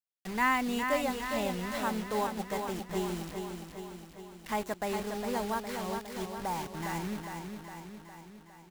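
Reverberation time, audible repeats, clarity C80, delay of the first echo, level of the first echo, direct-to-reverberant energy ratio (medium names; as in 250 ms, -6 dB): no reverb, 7, no reverb, 409 ms, -6.0 dB, no reverb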